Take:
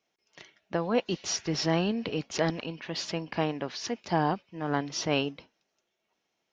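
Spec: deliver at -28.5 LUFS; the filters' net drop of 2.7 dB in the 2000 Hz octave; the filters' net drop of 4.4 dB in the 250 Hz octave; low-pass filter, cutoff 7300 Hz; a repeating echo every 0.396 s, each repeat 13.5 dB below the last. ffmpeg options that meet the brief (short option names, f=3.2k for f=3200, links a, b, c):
-af "lowpass=7.3k,equalizer=f=250:t=o:g=-6.5,equalizer=f=2k:t=o:g=-3.5,aecho=1:1:396|792:0.211|0.0444,volume=4dB"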